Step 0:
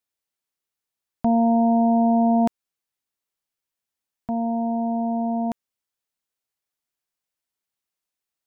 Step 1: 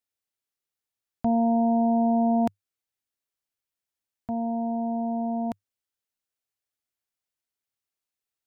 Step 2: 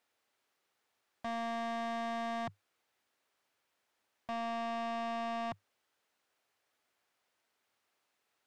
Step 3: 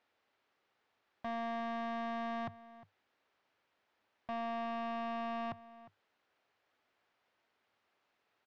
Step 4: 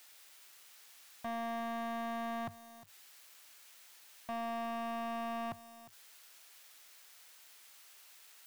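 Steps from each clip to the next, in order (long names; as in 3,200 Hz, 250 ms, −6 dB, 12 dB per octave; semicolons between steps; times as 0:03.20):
thirty-one-band graphic EQ 100 Hz +7 dB, 160 Hz −5 dB, 1,000 Hz −3 dB; level −3.5 dB
in parallel at +1 dB: brickwall limiter −25 dBFS, peak gain reduction 8.5 dB; on the sum: mid-hump overdrive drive 29 dB, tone 1,100 Hz, clips at −13 dBFS; soft clipping −27.5 dBFS, distortion −9 dB; level −8.5 dB
brickwall limiter −40.5 dBFS, peak gain reduction 4.5 dB; high-frequency loss of the air 180 metres; slap from a distant wall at 61 metres, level −17 dB; level +4 dB
spike at every zero crossing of −47 dBFS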